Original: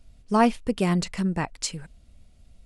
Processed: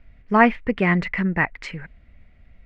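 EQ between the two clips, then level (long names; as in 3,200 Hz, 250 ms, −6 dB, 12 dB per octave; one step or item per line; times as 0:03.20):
low-pass with resonance 2,000 Hz, resonance Q 4.8
+2.5 dB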